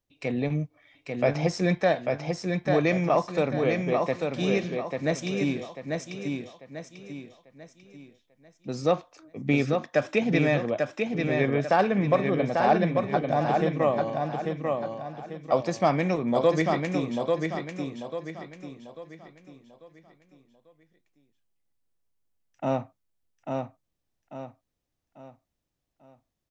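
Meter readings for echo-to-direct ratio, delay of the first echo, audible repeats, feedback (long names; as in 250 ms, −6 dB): −3.5 dB, 843 ms, 4, 38%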